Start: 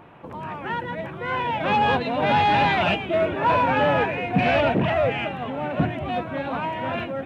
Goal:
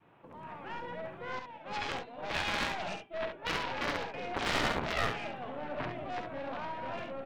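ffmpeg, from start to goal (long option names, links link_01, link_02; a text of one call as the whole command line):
ffmpeg -i in.wav -filter_complex "[0:a]highpass=frequency=110:poles=1,asettb=1/sr,asplit=3[link_01][link_02][link_03];[link_01]atrim=end=1.394[link_04];[link_02]atrim=start=1.39:end=4.14,asetpts=PTS-STARTPTS,afade=type=in:duration=0.004:curve=qsin,afade=type=out:start_time=2.746:duration=0.004:curve=qsin,agate=range=-33dB:threshold=-16dB:ratio=3:detection=peak[link_05];[link_03]atrim=start=4.136[link_06];[link_04][link_05]acrossfade=duration=0.004:curve1=hsin:curve2=qsin[link_07];[link_07][link_06]acrossfade=duration=0.004:curve1=qsin:curve2=hsin,adynamicequalizer=threshold=0.02:dfrequency=610:dqfactor=0.8:tfrequency=610:tqfactor=0.8:attack=5:release=100:ratio=0.375:range=2.5:mode=boostabove:tftype=bell,aeval=exprs='0.473*(cos(1*acos(clip(val(0)/0.473,-1,1)))-cos(1*PI/2))+0.119*(cos(2*acos(clip(val(0)/0.473,-1,1)))-cos(2*PI/2))+0.237*(cos(3*acos(clip(val(0)/0.473,-1,1)))-cos(3*PI/2))+0.0168*(cos(5*acos(clip(val(0)/0.473,-1,1)))-cos(5*PI/2))+0.0188*(cos(8*acos(clip(val(0)/0.473,-1,1)))-cos(8*PI/2))':channel_layout=same,asoftclip=type=hard:threshold=-15.5dB,aecho=1:1:51|68:0.316|0.422,volume=-4.5dB" out.wav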